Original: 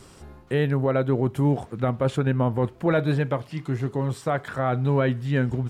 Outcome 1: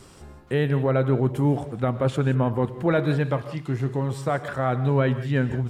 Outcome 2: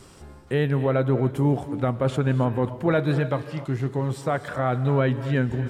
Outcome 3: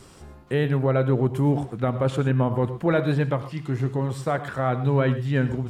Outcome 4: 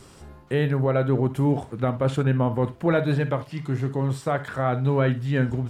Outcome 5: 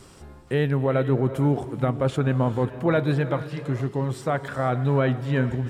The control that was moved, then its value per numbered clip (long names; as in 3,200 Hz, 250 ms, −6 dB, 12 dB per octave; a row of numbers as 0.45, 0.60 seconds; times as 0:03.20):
reverb whose tail is shaped and stops, gate: 200, 310, 140, 80, 500 milliseconds